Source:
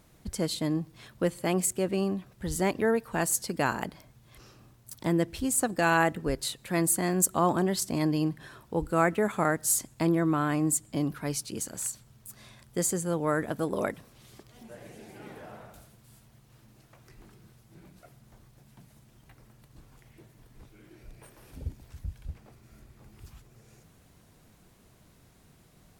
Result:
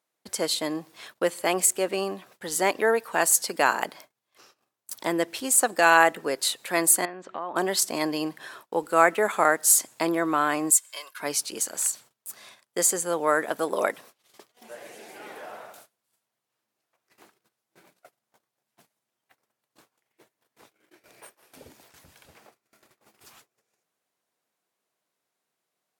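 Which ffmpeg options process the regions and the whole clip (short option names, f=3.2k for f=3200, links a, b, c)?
-filter_complex "[0:a]asettb=1/sr,asplit=3[a][b][c];[a]atrim=end=7.054[d];[b]atrim=start=7.05:end=7.56,asetpts=PTS-STARTPTS,afade=t=in:d=0.004:c=qsin,afade=t=out:st=0.506:d=0.004:c=qsin,lowpass=f=3.1k:w=0.5412,lowpass=f=3.1k:w=1.3066,acompressor=threshold=-35dB:ratio=6:attack=3.2:release=140:knee=1:detection=peak[e];[c]atrim=start=7.556[f];[d][e]acrossfade=d=0.004:c1=hsin:c2=qsin[g];[g][f]acrossfade=d=0.004:c1=qsin:c2=hsin,asettb=1/sr,asplit=3[h][i][j];[h]atrim=end=10.704[k];[i]atrim=start=10.7:end=11.2,asetpts=PTS-STARTPTS,afade=t=in:d=0.004:c=qsin,afade=t=out:st=0.496:d=0.004:c=qsin,highpass=1.5k,aecho=1:1:1.9:0.73,atrim=end_sample=22050[l];[j]atrim=start=11.196[m];[k][l]acrossfade=d=0.004:c1=hsin:c2=qsin[n];[n][m]acrossfade=d=0.004:c1=qsin:c2=hsin,agate=range=-25dB:threshold=-51dB:ratio=16:detection=peak,highpass=510,volume=7.5dB"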